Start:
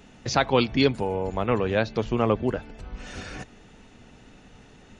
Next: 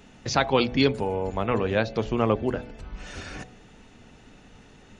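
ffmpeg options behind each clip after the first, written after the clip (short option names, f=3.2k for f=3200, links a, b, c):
-af "bandreject=f=61.67:t=h:w=4,bandreject=f=123.34:t=h:w=4,bandreject=f=185.01:t=h:w=4,bandreject=f=246.68:t=h:w=4,bandreject=f=308.35:t=h:w=4,bandreject=f=370.02:t=h:w=4,bandreject=f=431.69:t=h:w=4,bandreject=f=493.36:t=h:w=4,bandreject=f=555.03:t=h:w=4,bandreject=f=616.7:t=h:w=4,bandreject=f=678.37:t=h:w=4,bandreject=f=740.04:t=h:w=4,bandreject=f=801.71:t=h:w=4"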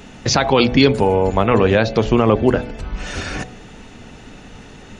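-af "alimiter=level_in=13dB:limit=-1dB:release=50:level=0:latency=1,volume=-1dB"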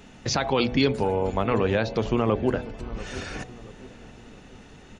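-filter_complex "[0:a]asplit=2[a][b];[b]adelay=684,lowpass=f=1.2k:p=1,volume=-16.5dB,asplit=2[c][d];[d]adelay=684,lowpass=f=1.2k:p=1,volume=0.47,asplit=2[e][f];[f]adelay=684,lowpass=f=1.2k:p=1,volume=0.47,asplit=2[g][h];[h]adelay=684,lowpass=f=1.2k:p=1,volume=0.47[i];[a][c][e][g][i]amix=inputs=5:normalize=0,volume=-9dB"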